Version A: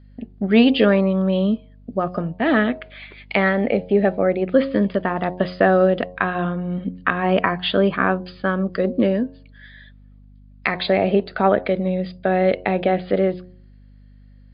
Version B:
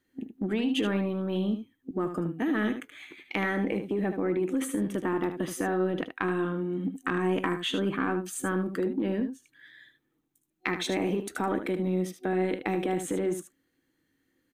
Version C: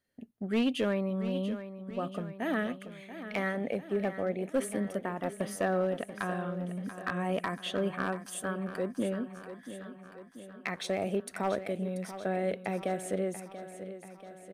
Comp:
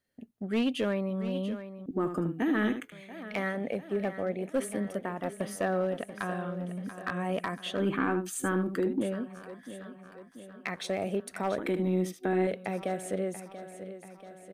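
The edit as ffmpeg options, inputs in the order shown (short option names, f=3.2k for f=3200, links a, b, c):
-filter_complex "[1:a]asplit=3[a][b][c];[2:a]asplit=4[d][e][f][g];[d]atrim=end=1.862[h];[a]atrim=start=1.858:end=2.922[i];[e]atrim=start=2.918:end=7.802[j];[b]atrim=start=7.798:end=9.012[k];[f]atrim=start=9.008:end=11.582[l];[c]atrim=start=11.578:end=12.472[m];[g]atrim=start=12.468[n];[h][i]acrossfade=d=0.004:c1=hsin:c2=hsin[o];[o][j]acrossfade=d=0.004:c1=hsin:c2=hsin[p];[p][k]acrossfade=d=0.004:c1=hsin:c2=hsin[q];[q][l]acrossfade=d=0.004:c1=hsin:c2=hsin[r];[r][m]acrossfade=d=0.004:c1=hsin:c2=hsin[s];[s][n]acrossfade=d=0.004:c1=hsin:c2=hsin"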